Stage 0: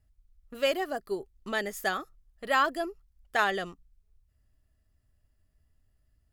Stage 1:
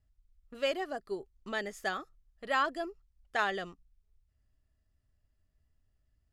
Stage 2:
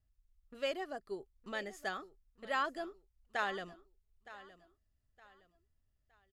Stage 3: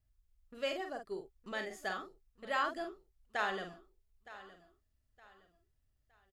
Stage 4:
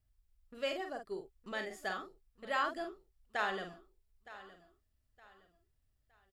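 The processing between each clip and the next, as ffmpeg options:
-af "lowpass=7.7k,volume=-4.5dB"
-af "aecho=1:1:915|1830|2745:0.141|0.0452|0.0145,volume=-5dB"
-filter_complex "[0:a]asplit=2[a][b];[b]adelay=47,volume=-6dB[c];[a][c]amix=inputs=2:normalize=0"
-af "bandreject=f=6.4k:w=16"

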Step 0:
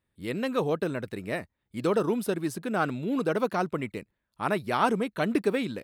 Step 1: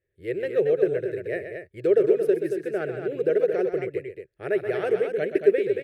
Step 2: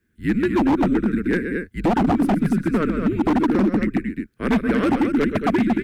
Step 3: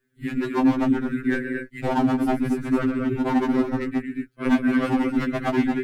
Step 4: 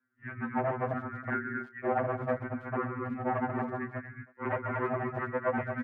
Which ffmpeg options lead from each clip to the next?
-filter_complex "[0:a]firequalizer=gain_entry='entry(130,0);entry(240,-19);entry(380,12);entry(610,3);entry(970,-24);entry(1700,4);entry(3700,-11)':delay=0.05:min_phase=1,asplit=2[a][b];[b]aecho=0:1:128.3|227.4:0.355|0.447[c];[a][c]amix=inputs=2:normalize=0,volume=-2dB"
-filter_complex "[0:a]asplit=2[a][b];[b]acompressor=threshold=-32dB:ratio=5,volume=2.5dB[c];[a][c]amix=inputs=2:normalize=0,afreqshift=-170,aeval=exprs='0.15*(abs(mod(val(0)/0.15+3,4)-2)-1)':c=same,volume=4.5dB"
-af "afftfilt=real='re*2.45*eq(mod(b,6),0)':imag='im*2.45*eq(mod(b,6),0)':win_size=2048:overlap=0.75"
-filter_complex "[0:a]aeval=exprs='0.158*(abs(mod(val(0)/0.158+3,4)-2)-1)':c=same,highpass=f=400:t=q:w=0.5412,highpass=f=400:t=q:w=1.307,lowpass=f=2.1k:t=q:w=0.5176,lowpass=f=2.1k:t=q:w=0.7071,lowpass=f=2.1k:t=q:w=1.932,afreqshift=-140,asplit=2[a][b];[b]adelay=320,highpass=300,lowpass=3.4k,asoftclip=type=hard:threshold=-24.5dB,volume=-21dB[c];[a][c]amix=inputs=2:normalize=0,volume=-2.5dB"

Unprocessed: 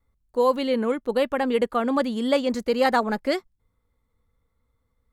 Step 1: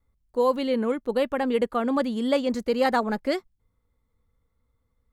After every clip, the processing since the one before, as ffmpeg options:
-af "lowshelf=f=480:g=3,volume=-3dB"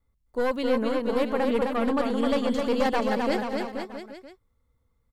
-af "aeval=exprs='0.355*(cos(1*acos(clip(val(0)/0.355,-1,1)))-cos(1*PI/2))+0.0794*(cos(4*acos(clip(val(0)/0.355,-1,1)))-cos(4*PI/2))+0.0562*(cos(5*acos(clip(val(0)/0.355,-1,1)))-cos(5*PI/2))':c=same,aecho=1:1:260|481|668.8|828.5|964.2:0.631|0.398|0.251|0.158|0.1,volume=-6.5dB"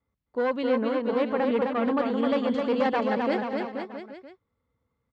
-af "highpass=110,lowpass=3.2k"

